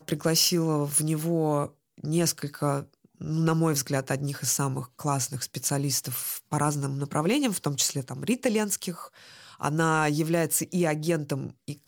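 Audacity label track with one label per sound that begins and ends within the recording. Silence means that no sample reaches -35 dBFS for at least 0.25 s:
2.040000	2.820000	sound
3.210000	9.050000	sound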